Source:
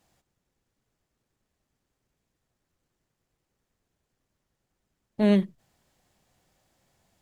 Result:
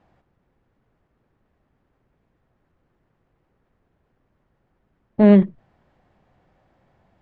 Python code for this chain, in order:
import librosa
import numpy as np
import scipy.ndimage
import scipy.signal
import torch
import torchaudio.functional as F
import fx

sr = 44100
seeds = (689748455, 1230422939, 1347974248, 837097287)

p1 = scipy.signal.sosfilt(scipy.signal.butter(2, 1700.0, 'lowpass', fs=sr, output='sos'), x)
p2 = fx.level_steps(p1, sr, step_db=17)
p3 = p1 + (p2 * librosa.db_to_amplitude(3.0))
y = p3 * librosa.db_to_amplitude(7.0)